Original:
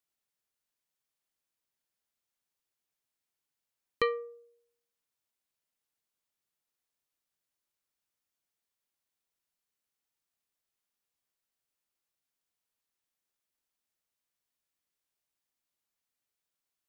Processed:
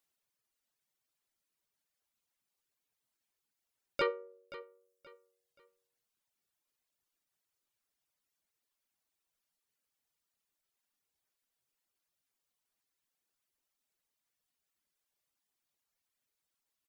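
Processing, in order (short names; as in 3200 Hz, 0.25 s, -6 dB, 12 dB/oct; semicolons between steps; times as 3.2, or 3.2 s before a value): harmoniser -4 st -7 dB, +3 st -6 dB; reverb removal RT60 1.5 s; limiter -23 dBFS, peak gain reduction 9.5 dB; feedback echo 0.527 s, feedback 31%, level -16 dB; gain +2.5 dB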